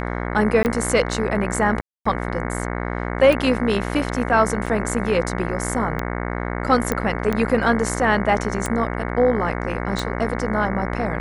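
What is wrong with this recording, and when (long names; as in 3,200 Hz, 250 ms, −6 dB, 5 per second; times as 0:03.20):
mains buzz 60 Hz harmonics 37 −26 dBFS
scratch tick 45 rpm −10 dBFS
0:00.63–0:00.65: drop-out 19 ms
0:01.81–0:02.06: drop-out 245 ms
0:04.66–0:04.67: drop-out 5.6 ms
0:06.92: click −8 dBFS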